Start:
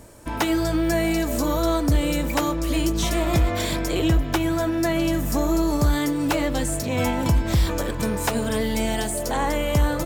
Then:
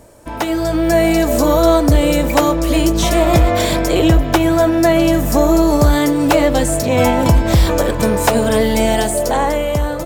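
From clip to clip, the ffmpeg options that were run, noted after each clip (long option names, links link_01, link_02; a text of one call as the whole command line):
ffmpeg -i in.wav -af "equalizer=frequency=610:width_type=o:width=1.1:gain=6,dynaudnorm=framelen=180:gausssize=9:maxgain=11.5dB" out.wav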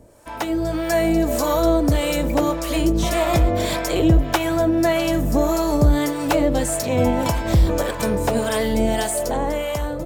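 ffmpeg -i in.wav -filter_complex "[0:a]acrossover=split=590[link_01][link_02];[link_01]aeval=exprs='val(0)*(1-0.7/2+0.7/2*cos(2*PI*1.7*n/s))':channel_layout=same[link_03];[link_02]aeval=exprs='val(0)*(1-0.7/2-0.7/2*cos(2*PI*1.7*n/s))':channel_layout=same[link_04];[link_03][link_04]amix=inputs=2:normalize=0,volume=-2.5dB" out.wav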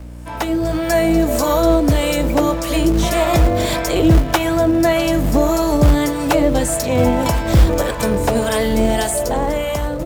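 ffmpeg -i in.wav -filter_complex "[0:a]aeval=exprs='val(0)+0.0178*(sin(2*PI*60*n/s)+sin(2*PI*2*60*n/s)/2+sin(2*PI*3*60*n/s)/3+sin(2*PI*4*60*n/s)/4+sin(2*PI*5*60*n/s)/5)':channel_layout=same,acrossover=split=180|7900[link_01][link_02][link_03];[link_01]acrusher=bits=3:mode=log:mix=0:aa=0.000001[link_04];[link_04][link_02][link_03]amix=inputs=3:normalize=0,volume=3.5dB" out.wav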